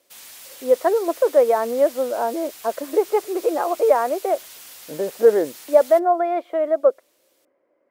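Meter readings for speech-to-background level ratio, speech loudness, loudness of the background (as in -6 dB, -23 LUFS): 19.0 dB, -20.0 LUFS, -39.0 LUFS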